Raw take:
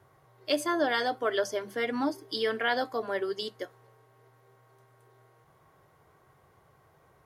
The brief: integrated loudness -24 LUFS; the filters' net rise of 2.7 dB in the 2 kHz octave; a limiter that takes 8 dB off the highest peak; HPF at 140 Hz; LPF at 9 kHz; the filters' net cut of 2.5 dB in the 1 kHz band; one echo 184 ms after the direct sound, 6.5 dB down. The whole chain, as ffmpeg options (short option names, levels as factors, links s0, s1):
-af "highpass=140,lowpass=9000,equalizer=f=1000:t=o:g=-5,equalizer=f=2000:t=o:g=5,alimiter=limit=0.0944:level=0:latency=1,aecho=1:1:184:0.473,volume=2.37"